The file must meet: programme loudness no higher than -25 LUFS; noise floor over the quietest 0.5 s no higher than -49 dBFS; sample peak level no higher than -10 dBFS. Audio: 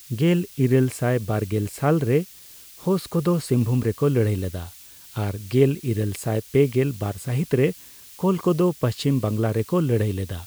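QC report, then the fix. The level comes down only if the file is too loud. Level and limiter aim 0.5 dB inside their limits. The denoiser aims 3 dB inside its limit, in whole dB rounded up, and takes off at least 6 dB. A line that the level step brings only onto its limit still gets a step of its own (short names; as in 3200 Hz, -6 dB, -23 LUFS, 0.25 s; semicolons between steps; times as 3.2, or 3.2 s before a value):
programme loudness -23.0 LUFS: fail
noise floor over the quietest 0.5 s -45 dBFS: fail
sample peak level -6.0 dBFS: fail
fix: denoiser 6 dB, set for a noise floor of -45 dBFS; gain -2.5 dB; limiter -10.5 dBFS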